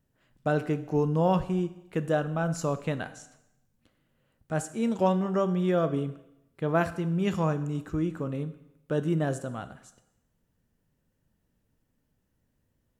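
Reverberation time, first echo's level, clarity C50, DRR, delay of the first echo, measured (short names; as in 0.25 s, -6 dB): 0.90 s, none, 14.0 dB, 11.0 dB, none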